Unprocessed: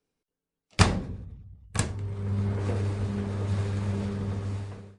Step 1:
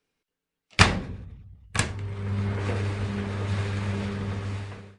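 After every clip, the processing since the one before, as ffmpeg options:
-af "equalizer=f=2300:t=o:w=2.2:g=9"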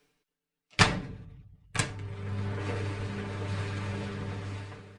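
-af "aecho=1:1:6.8:0.73,areverse,acompressor=mode=upward:threshold=0.0112:ratio=2.5,areverse,volume=0.531"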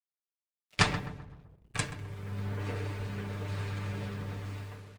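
-filter_complex "[0:a]acrusher=bits=8:mix=0:aa=0.5,asplit=2[s0][s1];[s1]adelay=129,lowpass=f=1800:p=1,volume=0.316,asplit=2[s2][s3];[s3]adelay=129,lowpass=f=1800:p=1,volume=0.44,asplit=2[s4][s5];[s5]adelay=129,lowpass=f=1800:p=1,volume=0.44,asplit=2[s6][s7];[s7]adelay=129,lowpass=f=1800:p=1,volume=0.44,asplit=2[s8][s9];[s9]adelay=129,lowpass=f=1800:p=1,volume=0.44[s10];[s2][s4][s6][s8][s10]amix=inputs=5:normalize=0[s11];[s0][s11]amix=inputs=2:normalize=0,volume=0.668"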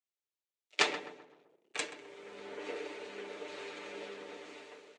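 -af "highpass=f=350:w=0.5412,highpass=f=350:w=1.3066,equalizer=f=360:t=q:w=4:g=4,equalizer=f=740:t=q:w=4:g=-3,equalizer=f=1100:t=q:w=4:g=-8,equalizer=f=1600:t=q:w=4:g=-6,equalizer=f=5000:t=q:w=4:g=-5,lowpass=f=7400:w=0.5412,lowpass=f=7400:w=1.3066,volume=1.12"

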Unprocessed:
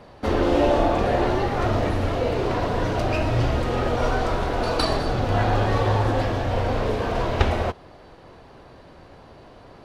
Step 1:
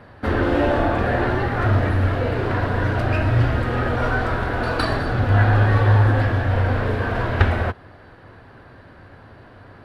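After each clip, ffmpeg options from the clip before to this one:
-af "equalizer=f=100:t=o:w=0.67:g=11,equalizer=f=250:t=o:w=0.67:g=4,equalizer=f=1600:t=o:w=0.67:g=11,equalizer=f=6300:t=o:w=0.67:g=-8,volume=0.794"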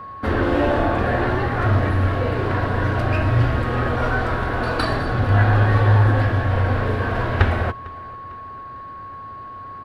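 -af "aecho=1:1:451|902|1353:0.075|0.0337|0.0152,aeval=exprs='val(0)+0.0224*sin(2*PI*1100*n/s)':c=same"

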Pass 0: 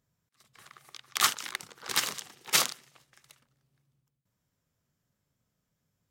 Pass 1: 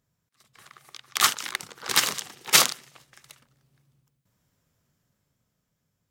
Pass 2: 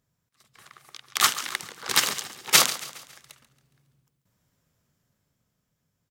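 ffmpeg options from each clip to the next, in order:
-af "dynaudnorm=f=260:g=11:m=2.24,volume=1.26"
-af "aecho=1:1:138|276|414|552:0.168|0.0789|0.0371|0.0174"

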